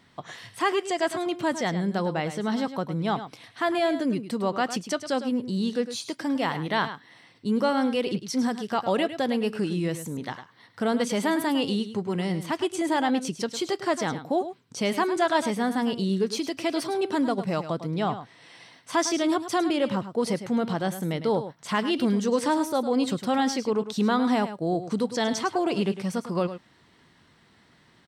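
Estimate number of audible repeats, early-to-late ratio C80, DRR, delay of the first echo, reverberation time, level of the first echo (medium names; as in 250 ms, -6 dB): 1, no reverb, no reverb, 105 ms, no reverb, -11.5 dB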